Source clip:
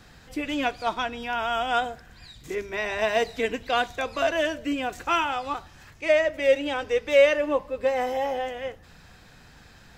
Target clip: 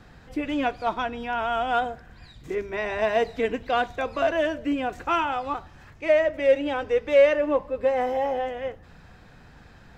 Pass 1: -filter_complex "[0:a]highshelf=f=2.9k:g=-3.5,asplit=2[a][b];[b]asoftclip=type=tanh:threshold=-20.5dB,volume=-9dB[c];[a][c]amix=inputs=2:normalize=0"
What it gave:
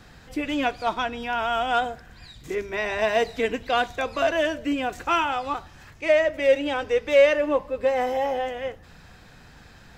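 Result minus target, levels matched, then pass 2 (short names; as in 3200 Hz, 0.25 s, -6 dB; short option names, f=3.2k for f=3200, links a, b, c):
8000 Hz band +7.0 dB
-filter_complex "[0:a]highshelf=f=2.9k:g=-13,asplit=2[a][b];[b]asoftclip=type=tanh:threshold=-20.5dB,volume=-9dB[c];[a][c]amix=inputs=2:normalize=0"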